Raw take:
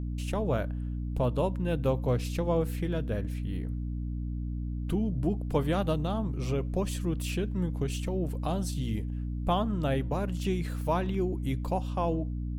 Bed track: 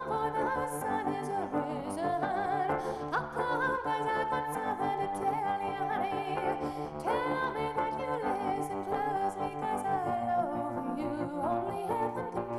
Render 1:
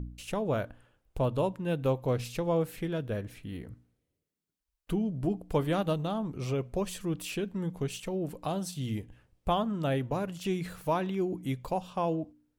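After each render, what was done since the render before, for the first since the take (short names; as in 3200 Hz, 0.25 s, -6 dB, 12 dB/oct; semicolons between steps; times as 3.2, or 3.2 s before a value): de-hum 60 Hz, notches 5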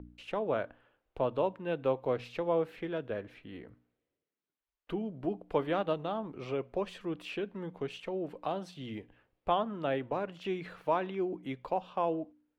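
three-band isolator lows -14 dB, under 270 Hz, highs -24 dB, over 3700 Hz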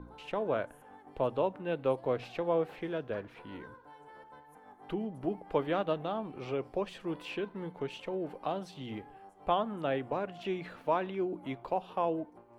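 add bed track -22 dB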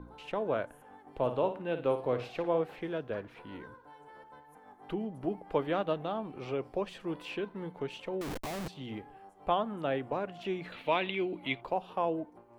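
1.07–2.61 flutter echo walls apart 9.5 m, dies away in 0.35 s; 8.21–8.68 Schmitt trigger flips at -47.5 dBFS; 10.72–11.61 band shelf 2900 Hz +14 dB 1.3 oct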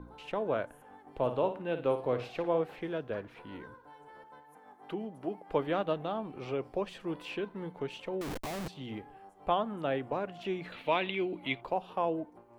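4.24–5.48 HPF 120 Hz -> 380 Hz 6 dB/oct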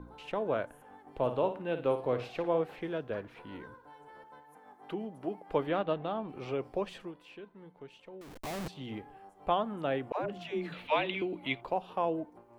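5.69–6.29 LPF 4500 Hz; 7–8.48 dip -12 dB, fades 0.12 s; 10.12–11.22 dispersion lows, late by 0.121 s, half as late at 350 Hz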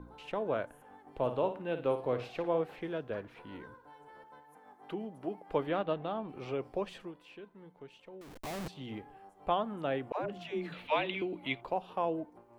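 gain -1.5 dB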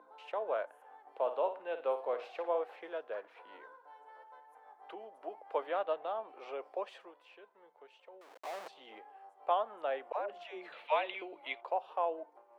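HPF 570 Hz 24 dB/oct; tilt -3 dB/oct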